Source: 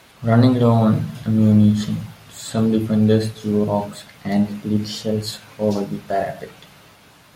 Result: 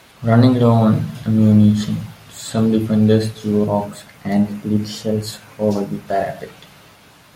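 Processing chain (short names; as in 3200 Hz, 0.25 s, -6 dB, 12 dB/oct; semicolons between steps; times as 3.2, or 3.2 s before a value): 3.66–6.07 bell 3800 Hz -4.5 dB 1 oct; gain +2 dB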